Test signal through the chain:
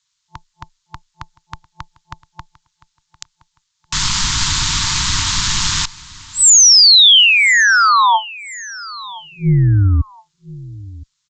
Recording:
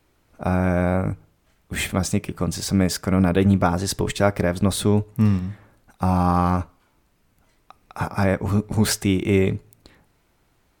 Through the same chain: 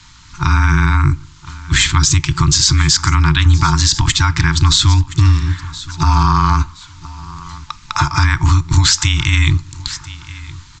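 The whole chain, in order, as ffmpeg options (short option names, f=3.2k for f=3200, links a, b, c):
-filter_complex "[0:a]afftfilt=real='re*(1-between(b*sr/4096,180,890))':imag='im*(1-between(b*sr/4096,180,890))':win_size=4096:overlap=0.75,acompressor=threshold=-33dB:ratio=3,tremolo=f=200:d=0.462,afreqshift=-15,aexciter=amount=3.6:drive=1.3:freq=3.4k,asplit=2[a][b];[b]aecho=0:1:1019|2038:0.1|0.031[c];[a][c]amix=inputs=2:normalize=0,aresample=16000,aresample=44100,alimiter=level_in=24.5dB:limit=-1dB:release=50:level=0:latency=1,volume=-1dB"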